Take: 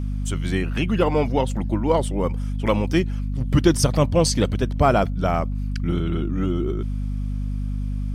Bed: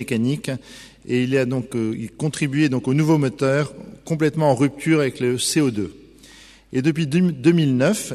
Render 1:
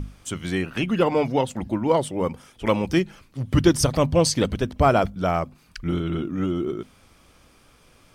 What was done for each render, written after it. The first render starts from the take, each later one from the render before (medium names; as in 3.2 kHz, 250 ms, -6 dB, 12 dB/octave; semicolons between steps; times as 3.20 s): hum notches 50/100/150/200/250 Hz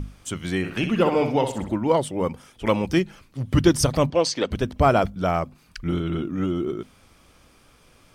0.58–1.76 s: flutter echo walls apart 10.8 m, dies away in 0.46 s; 4.10–4.51 s: three-band isolator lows -18 dB, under 280 Hz, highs -21 dB, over 6.8 kHz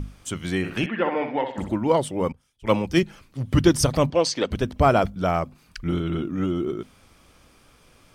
0.86–1.58 s: cabinet simulation 320–3100 Hz, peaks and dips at 420 Hz -7 dB, 660 Hz -3 dB, 1.2 kHz -5 dB, 1.8 kHz +10 dB, 2.7 kHz -6 dB; 2.32–3.03 s: three bands expanded up and down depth 100%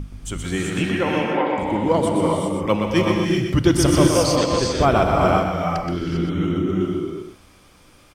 delay 124 ms -6 dB; gated-style reverb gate 420 ms rising, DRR -0.5 dB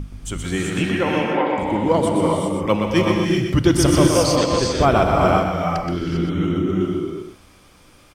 trim +1 dB; peak limiter -3 dBFS, peak gain reduction 1 dB